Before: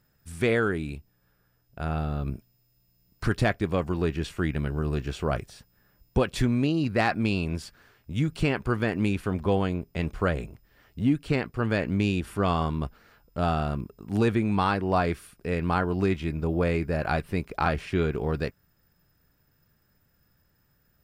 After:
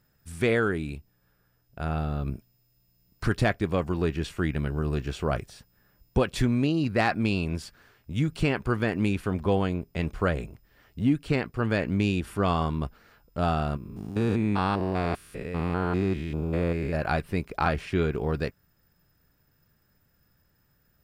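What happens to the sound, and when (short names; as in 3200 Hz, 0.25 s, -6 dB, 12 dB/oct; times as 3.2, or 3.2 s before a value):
13.77–16.95 stepped spectrum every 0.2 s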